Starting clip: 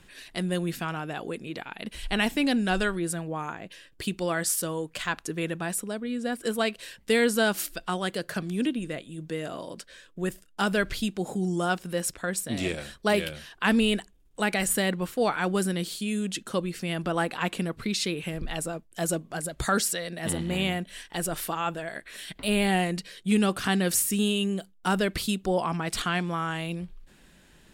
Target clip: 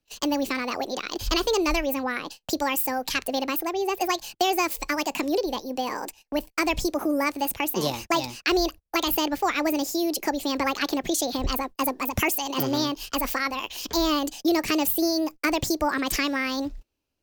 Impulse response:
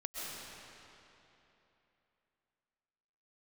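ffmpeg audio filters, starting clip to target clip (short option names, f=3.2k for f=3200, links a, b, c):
-filter_complex "[0:a]agate=range=-32dB:threshold=-46dB:ratio=16:detection=peak,asetrate=71001,aresample=44100,acrossover=split=190[a][b];[b]acompressor=threshold=-31dB:ratio=2[c];[a][c]amix=inputs=2:normalize=0,volume=6.5dB"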